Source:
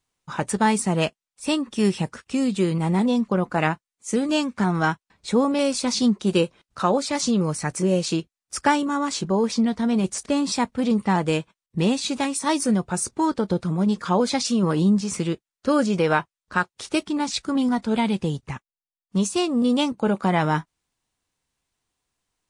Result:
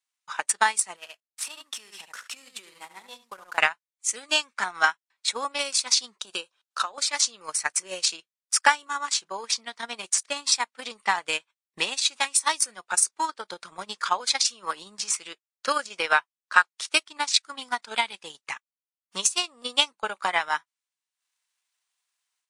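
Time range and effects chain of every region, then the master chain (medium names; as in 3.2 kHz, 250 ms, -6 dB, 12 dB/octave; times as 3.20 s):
0.96–3.58 s: CVSD coder 64 kbps + delay 70 ms -6 dB + compression 3:1, threshold -34 dBFS
6.21–6.98 s: peaking EQ 2.1 kHz -14 dB 0.23 oct + compression, threshold -22 dBFS
whole clip: high-pass 1.3 kHz 12 dB/octave; level rider gain up to 7 dB; transient shaper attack +10 dB, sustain -10 dB; trim -6.5 dB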